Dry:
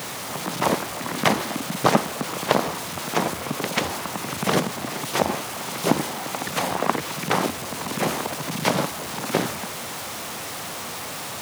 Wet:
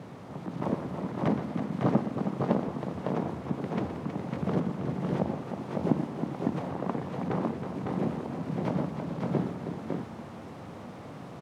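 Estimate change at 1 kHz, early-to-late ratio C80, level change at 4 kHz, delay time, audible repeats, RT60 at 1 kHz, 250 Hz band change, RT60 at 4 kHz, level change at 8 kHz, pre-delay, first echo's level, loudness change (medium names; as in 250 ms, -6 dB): -12.0 dB, no reverb, -24.0 dB, 120 ms, 3, no reverb, -1.5 dB, no reverb, under -30 dB, no reverb, -11.0 dB, -6.5 dB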